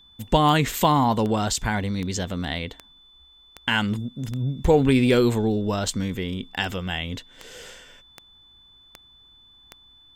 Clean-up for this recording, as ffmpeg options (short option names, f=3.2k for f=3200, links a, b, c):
-af "adeclick=t=4,bandreject=f=3.5k:w=30"